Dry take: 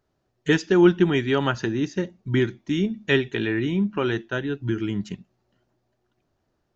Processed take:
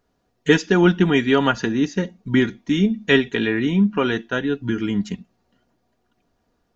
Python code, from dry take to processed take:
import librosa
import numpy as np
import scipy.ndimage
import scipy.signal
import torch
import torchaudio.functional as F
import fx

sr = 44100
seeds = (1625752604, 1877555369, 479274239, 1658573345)

y = x + 0.49 * np.pad(x, (int(4.2 * sr / 1000.0), 0))[:len(x)]
y = y * 10.0 ** (4.0 / 20.0)